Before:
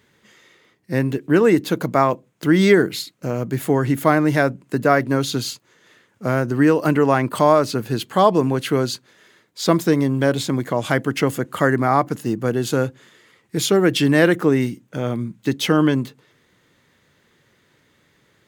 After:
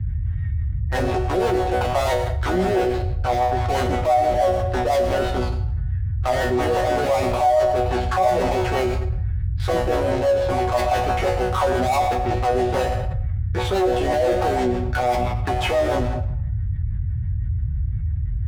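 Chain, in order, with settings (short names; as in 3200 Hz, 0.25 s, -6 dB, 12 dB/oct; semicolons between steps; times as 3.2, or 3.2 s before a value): octaver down 2 oct, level +3 dB; LPF 3400 Hz 12 dB/oct; low shelf 170 Hz -4 dB; sample leveller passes 1; bell 790 Hz +13.5 dB 0.52 oct; auto-wah 620–1700 Hz, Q 2.7, down, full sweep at -9.5 dBFS; in parallel at -5 dB: fuzz box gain 32 dB, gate -40 dBFS; on the sum: resonator bank B2 fifth, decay 0.35 s; rotary speaker horn 6 Hz; band noise 40–110 Hz -41 dBFS; on a send at -13 dB: reverb RT60 0.70 s, pre-delay 83 ms; on the sum: fast leveller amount 70%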